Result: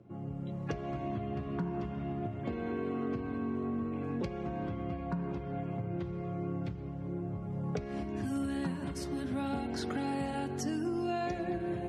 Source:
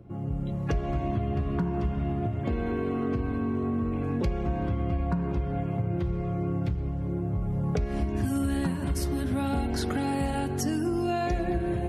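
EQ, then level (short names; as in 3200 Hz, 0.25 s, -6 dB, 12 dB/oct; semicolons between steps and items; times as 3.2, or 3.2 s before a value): BPF 130–7700 Hz; -5.5 dB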